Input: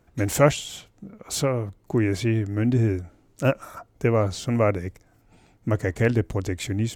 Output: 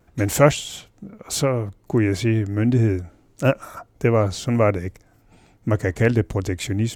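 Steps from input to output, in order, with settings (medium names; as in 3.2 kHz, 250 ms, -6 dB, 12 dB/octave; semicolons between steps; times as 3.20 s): vibrato 0.31 Hz 7.4 cents; trim +3 dB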